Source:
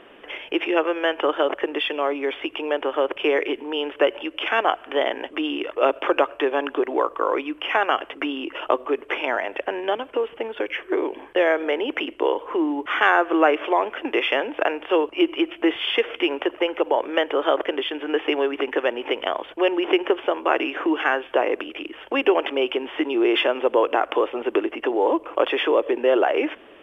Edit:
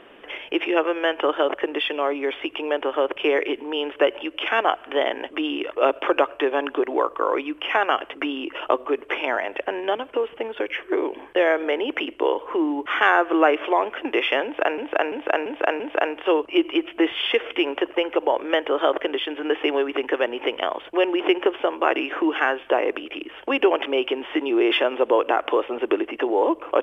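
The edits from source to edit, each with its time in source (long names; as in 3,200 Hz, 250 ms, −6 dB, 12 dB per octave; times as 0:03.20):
0:14.44–0:14.78: repeat, 5 plays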